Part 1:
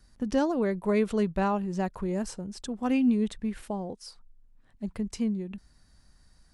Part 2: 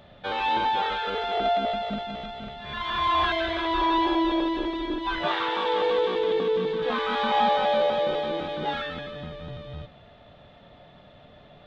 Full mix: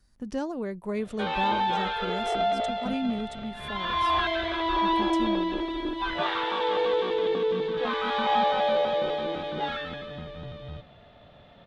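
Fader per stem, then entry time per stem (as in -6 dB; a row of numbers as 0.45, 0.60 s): -5.5, -1.5 dB; 0.00, 0.95 s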